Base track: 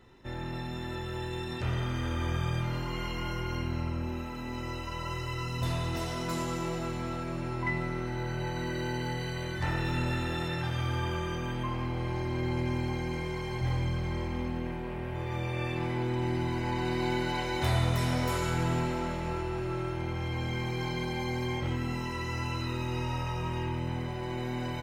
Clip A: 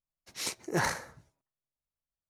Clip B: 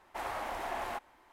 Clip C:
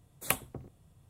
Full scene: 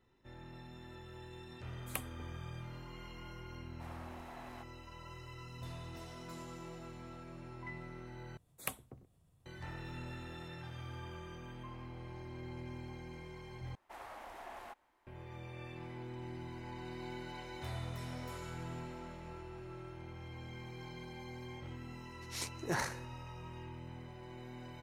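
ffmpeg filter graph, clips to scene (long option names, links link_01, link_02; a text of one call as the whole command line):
ffmpeg -i bed.wav -i cue0.wav -i cue1.wav -i cue2.wav -filter_complex "[3:a]asplit=2[link_01][link_02];[2:a]asplit=2[link_03][link_04];[0:a]volume=-15dB[link_05];[link_02]acompressor=mode=upward:threshold=-55dB:ratio=2.5:attack=3.2:release=140:knee=2.83:detection=peak[link_06];[link_05]asplit=3[link_07][link_08][link_09];[link_07]atrim=end=8.374[link_10];[link_06]atrim=end=1.09,asetpts=PTS-STARTPTS,volume=-10dB[link_11];[link_08]atrim=start=9.456:end=13.754[link_12];[link_04]atrim=end=1.32,asetpts=PTS-STARTPTS,volume=-12dB[link_13];[link_09]atrim=start=15.066[link_14];[link_01]atrim=end=1.09,asetpts=PTS-STARTPTS,volume=-11dB,afade=type=in:duration=0.004:curve=hsin,afade=type=out:start_time=1.086:duration=0.004:curve=hsin,adelay=1650[link_15];[link_03]atrim=end=1.32,asetpts=PTS-STARTPTS,volume=-14.5dB,afade=type=in:duration=0.004:curve=hsin,afade=type=out:start_time=1.316:duration=0.004:curve=hsin,adelay=160965S[link_16];[1:a]atrim=end=2.29,asetpts=PTS-STARTPTS,volume=-6.5dB,afade=type=in:duration=0.004:curve=hsin,afade=type=out:start_time=2.286:duration=0.004:curve=hsin,adelay=21950[link_17];[link_10][link_11]acrossfade=duration=0.004:curve1=hsin:curve2=hsin[link_18];[link_18][link_12]acrossfade=duration=0.004:curve1=hsin:curve2=hsin[link_19];[link_19][link_13]acrossfade=duration=0.004:curve1=hsin:curve2=hsin[link_20];[link_20][link_14]acrossfade=duration=0.004:curve1=hsin:curve2=hsin[link_21];[link_21][link_15][link_16][link_17]amix=inputs=4:normalize=0" out.wav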